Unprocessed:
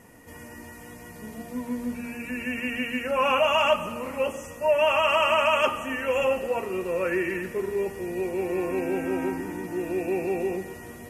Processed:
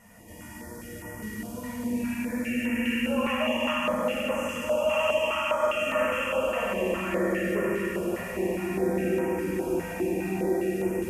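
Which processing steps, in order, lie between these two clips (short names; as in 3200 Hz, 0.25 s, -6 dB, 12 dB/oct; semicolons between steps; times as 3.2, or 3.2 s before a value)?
compressor, threshold -27 dBFS, peak gain reduction 10.5 dB; diffused feedback echo 0.626 s, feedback 41%, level -6.5 dB; reverb RT60 4.0 s, pre-delay 5 ms, DRR -6.5 dB; stepped notch 4.9 Hz 350–3900 Hz; gain -3.5 dB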